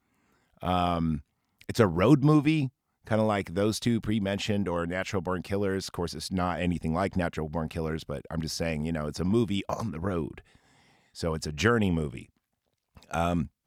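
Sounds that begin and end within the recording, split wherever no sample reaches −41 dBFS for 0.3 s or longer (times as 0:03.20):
0:00.62–0:01.20
0:01.61–0:02.69
0:03.07–0:10.39
0:11.16–0:12.23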